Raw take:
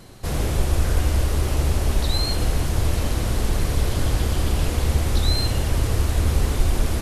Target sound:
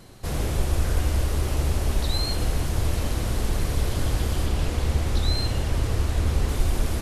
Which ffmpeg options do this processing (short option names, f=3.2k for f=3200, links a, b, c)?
-filter_complex "[0:a]asettb=1/sr,asplit=3[a][b][c];[a]atrim=end=4.464[d];[b]atrim=start=4.46:end=6.49,asetpts=PTS-STARTPTS,afade=t=in:d=0.004:c=qsin,afade=t=out:st=2.026:d=0.004:c=qsin,highshelf=f=10k:g=-8.5[e];[c]atrim=start=6.486[f];[d][e]acrossfade=d=0.004:c1=hsin:c2=qsin[g];[g][f]acrossfade=d=0.004:c1=qsin:c2=hsin,volume=-3dB"